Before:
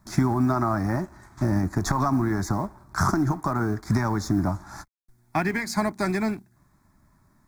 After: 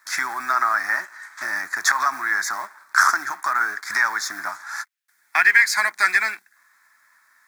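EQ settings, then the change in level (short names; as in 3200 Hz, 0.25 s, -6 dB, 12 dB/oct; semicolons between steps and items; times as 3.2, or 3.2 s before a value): resonant high-pass 1700 Hz, resonance Q 2.9; +8.5 dB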